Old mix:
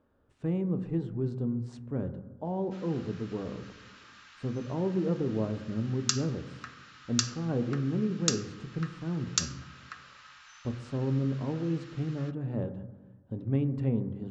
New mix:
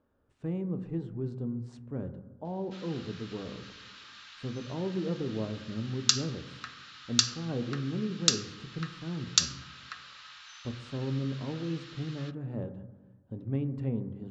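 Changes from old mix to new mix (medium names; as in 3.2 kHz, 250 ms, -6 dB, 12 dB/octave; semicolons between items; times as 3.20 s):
speech -3.5 dB; background: add peaking EQ 3.8 kHz +9 dB 1 oct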